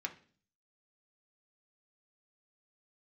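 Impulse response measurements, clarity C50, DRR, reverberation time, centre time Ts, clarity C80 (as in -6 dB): 14.5 dB, 2.5 dB, 0.45 s, 7 ms, 19.5 dB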